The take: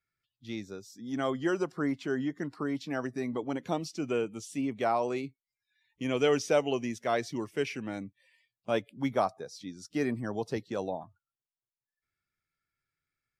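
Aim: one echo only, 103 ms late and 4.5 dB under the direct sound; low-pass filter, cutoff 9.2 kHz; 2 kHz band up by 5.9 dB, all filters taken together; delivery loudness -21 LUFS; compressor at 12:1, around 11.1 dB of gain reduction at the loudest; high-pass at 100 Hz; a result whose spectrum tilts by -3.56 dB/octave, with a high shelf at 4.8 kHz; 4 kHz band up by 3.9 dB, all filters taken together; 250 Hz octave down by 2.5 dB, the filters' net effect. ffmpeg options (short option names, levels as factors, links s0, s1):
-af "highpass=100,lowpass=9200,equalizer=f=250:t=o:g=-3,equalizer=f=2000:t=o:g=7.5,equalizer=f=4000:t=o:g=5,highshelf=f=4800:g=-6,acompressor=threshold=0.0282:ratio=12,aecho=1:1:103:0.596,volume=5.96"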